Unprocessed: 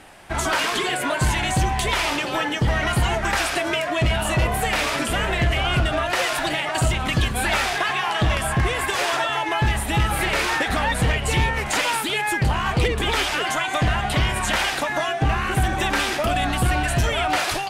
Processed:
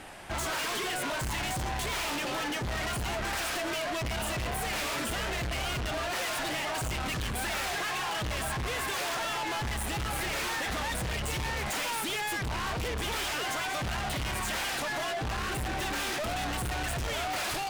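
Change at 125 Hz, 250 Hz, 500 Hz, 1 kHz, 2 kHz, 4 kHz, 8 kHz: -13.5, -11.0, -10.5, -10.5, -10.0, -8.5, -6.5 dB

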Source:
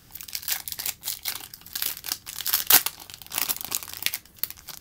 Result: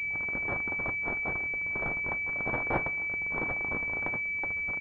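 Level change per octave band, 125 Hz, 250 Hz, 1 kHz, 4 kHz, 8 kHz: +8.5 dB, +7.0 dB, 0.0 dB, under -35 dB, under -40 dB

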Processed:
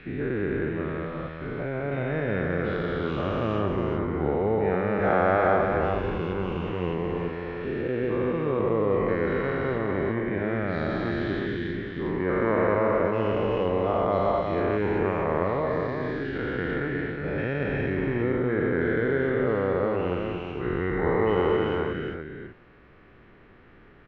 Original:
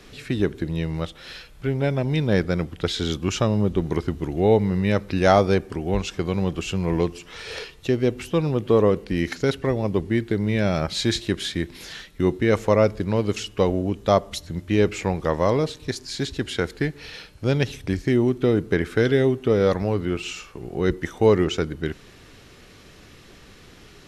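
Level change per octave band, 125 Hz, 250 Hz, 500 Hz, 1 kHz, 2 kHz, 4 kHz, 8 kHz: -6.0 dB, -4.5 dB, -2.5 dB, +0.5 dB, 0.0 dB, -13.0 dB, under -30 dB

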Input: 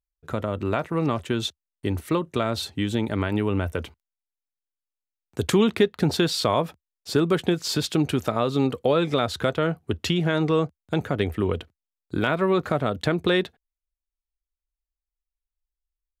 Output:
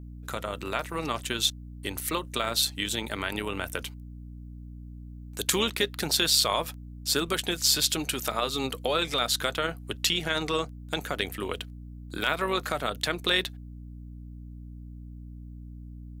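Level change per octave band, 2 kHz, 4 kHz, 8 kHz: +0.5, +4.5, +8.5 dB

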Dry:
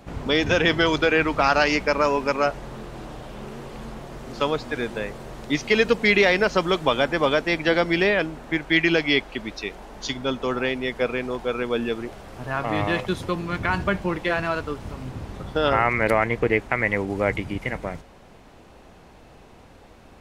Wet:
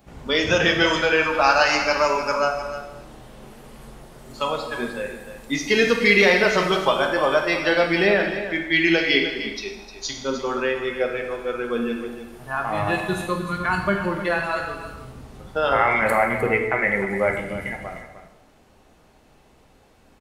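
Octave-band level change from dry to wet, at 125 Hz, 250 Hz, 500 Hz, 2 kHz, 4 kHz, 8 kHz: -2.5, -0.5, +1.0, +2.5, +2.0, +5.0 dB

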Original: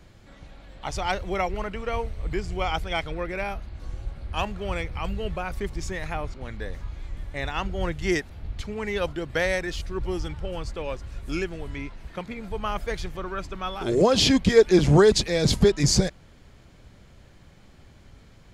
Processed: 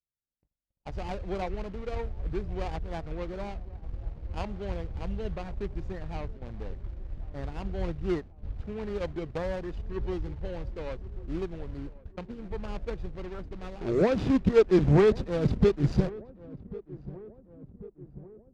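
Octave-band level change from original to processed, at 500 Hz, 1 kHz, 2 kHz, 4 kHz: -4.5, -9.0, -12.0, -18.5 dB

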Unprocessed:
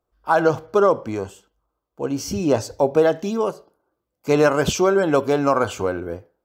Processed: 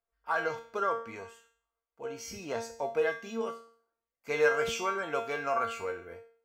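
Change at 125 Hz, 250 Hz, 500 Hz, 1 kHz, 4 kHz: -22.5, -21.0, -13.5, -10.0, -10.0 dB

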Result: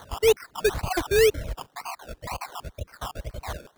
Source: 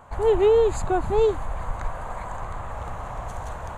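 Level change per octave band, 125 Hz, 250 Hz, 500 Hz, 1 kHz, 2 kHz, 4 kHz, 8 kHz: -3.0, -4.5, -2.5, -5.0, +7.0, +10.0, +8.0 dB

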